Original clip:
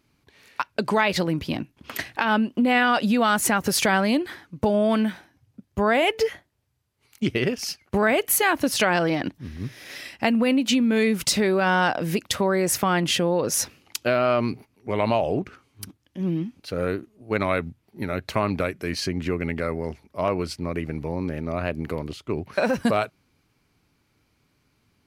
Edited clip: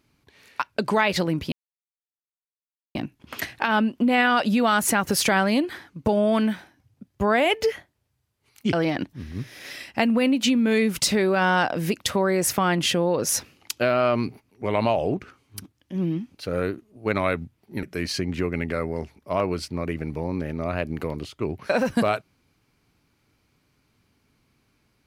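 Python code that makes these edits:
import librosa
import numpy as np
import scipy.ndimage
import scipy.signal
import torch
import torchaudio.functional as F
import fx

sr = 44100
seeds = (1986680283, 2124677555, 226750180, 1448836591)

y = fx.edit(x, sr, fx.insert_silence(at_s=1.52, length_s=1.43),
    fx.cut(start_s=7.3, length_s=1.68),
    fx.cut(start_s=18.08, length_s=0.63), tone=tone)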